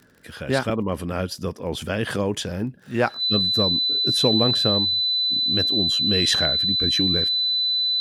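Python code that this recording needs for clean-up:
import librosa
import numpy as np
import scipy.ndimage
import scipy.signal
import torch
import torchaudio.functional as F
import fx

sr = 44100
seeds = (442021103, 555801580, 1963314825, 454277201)

y = fx.fix_declick_ar(x, sr, threshold=6.5)
y = fx.notch(y, sr, hz=4000.0, q=30.0)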